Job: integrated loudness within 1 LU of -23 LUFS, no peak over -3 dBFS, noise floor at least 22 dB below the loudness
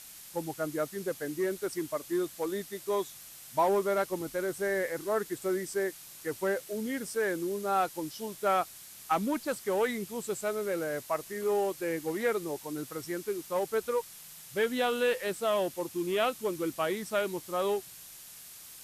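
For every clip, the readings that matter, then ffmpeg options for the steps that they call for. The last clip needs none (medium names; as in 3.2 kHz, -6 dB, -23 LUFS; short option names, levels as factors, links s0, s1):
noise floor -49 dBFS; noise floor target -54 dBFS; loudness -32.0 LUFS; peak level -15.5 dBFS; loudness target -23.0 LUFS
-> -af "afftdn=nr=6:nf=-49"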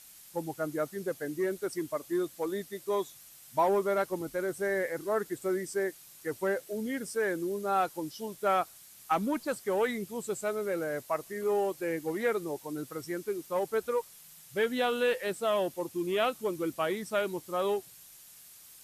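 noise floor -54 dBFS; noise floor target -55 dBFS
-> -af "afftdn=nr=6:nf=-54"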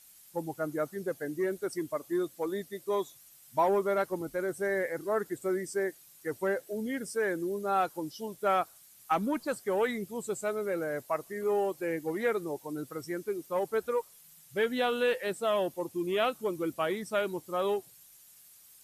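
noise floor -57 dBFS; loudness -32.5 LUFS; peak level -15.5 dBFS; loudness target -23.0 LUFS
-> -af "volume=2.99"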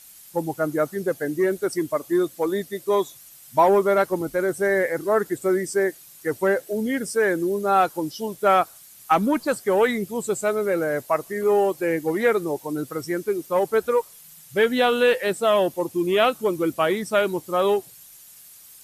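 loudness -23.0 LUFS; peak level -6.0 dBFS; noise floor -48 dBFS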